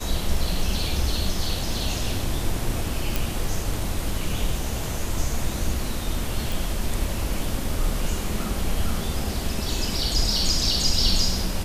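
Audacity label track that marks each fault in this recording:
3.160000	3.160000	click
6.520000	6.520000	click

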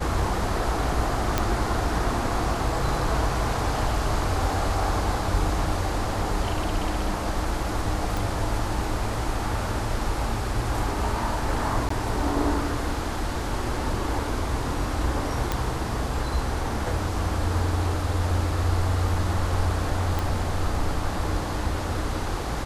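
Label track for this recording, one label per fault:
1.380000	1.380000	click −7 dBFS
8.170000	8.170000	click
11.890000	11.900000	drop-out 14 ms
15.520000	15.520000	click −10 dBFS
20.190000	20.190000	click

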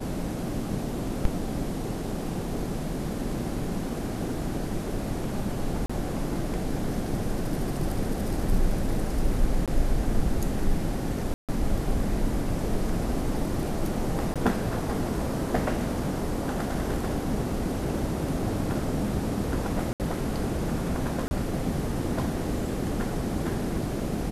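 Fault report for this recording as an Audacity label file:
5.860000	5.890000	drop-out 35 ms
9.660000	9.680000	drop-out 17 ms
11.340000	11.490000	drop-out 147 ms
14.340000	14.360000	drop-out 17 ms
19.930000	20.000000	drop-out 68 ms
21.280000	21.310000	drop-out 30 ms

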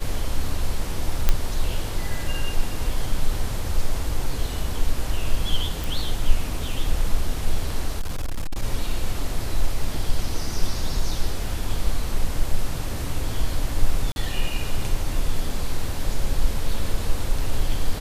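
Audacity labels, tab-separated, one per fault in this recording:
1.290000	1.290000	click −4 dBFS
5.840000	5.840000	click
7.990000	8.630000	clipping −21.5 dBFS
14.120000	14.160000	drop-out 41 ms

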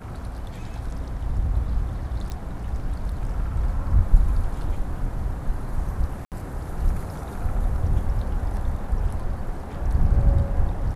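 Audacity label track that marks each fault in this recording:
2.300000	2.300000	click −21 dBFS
6.250000	6.320000	drop-out 68 ms

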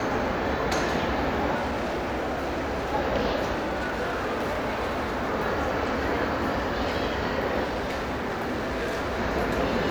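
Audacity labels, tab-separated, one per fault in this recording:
1.550000	2.940000	clipping −25 dBFS
3.540000	5.240000	clipping −24.5 dBFS
7.630000	9.200000	clipping −25.5 dBFS

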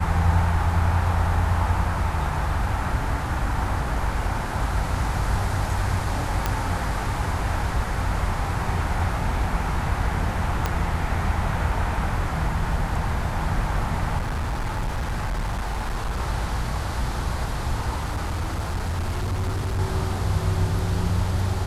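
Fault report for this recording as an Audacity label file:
6.460000	6.460000	click −8 dBFS
10.660000	10.660000	click −9 dBFS
14.180000	16.190000	clipping −22.5 dBFS
17.960000	19.800000	clipping −22 dBFS

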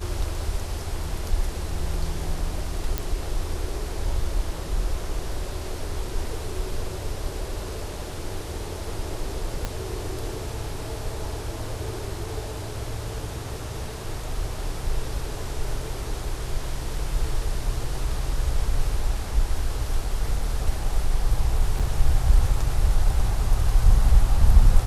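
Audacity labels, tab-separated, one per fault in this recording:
2.980000	2.980000	click
9.650000	9.650000	click −13 dBFS
21.790000	21.800000	drop-out 6.6 ms

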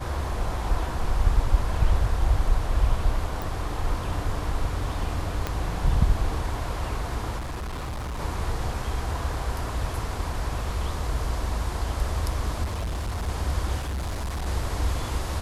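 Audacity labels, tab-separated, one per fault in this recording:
3.420000	3.420000	click
5.470000	5.470000	click −12 dBFS
7.380000	8.200000	clipping −29 dBFS
12.630000	13.290000	clipping −25.5 dBFS
13.790000	14.470000	clipping −26.5 dBFS

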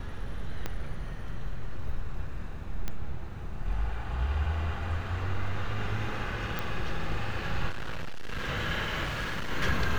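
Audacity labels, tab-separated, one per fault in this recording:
0.660000	0.660000	click −17 dBFS
2.880000	2.880000	click −17 dBFS
6.590000	6.590000	click
7.690000	8.490000	clipping −29 dBFS
9.030000	9.510000	clipping −29 dBFS

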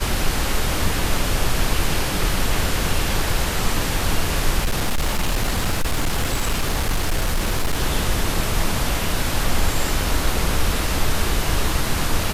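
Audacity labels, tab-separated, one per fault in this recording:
4.580000	7.820000	clipping −15.5 dBFS

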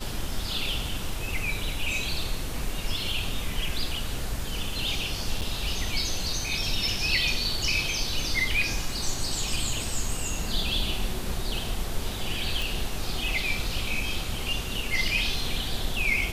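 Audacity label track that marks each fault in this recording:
5.410000	5.420000	drop-out 7.3 ms
12.620000	12.620000	click

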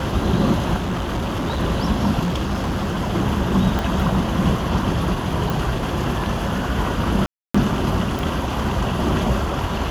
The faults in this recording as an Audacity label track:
0.770000	1.600000	clipping −19.5 dBFS
2.230000	3.110000	clipping −18.5 dBFS
3.790000	3.790000	click −9 dBFS
5.500000	5.500000	click
7.260000	7.540000	drop-out 285 ms
8.190000	8.190000	click

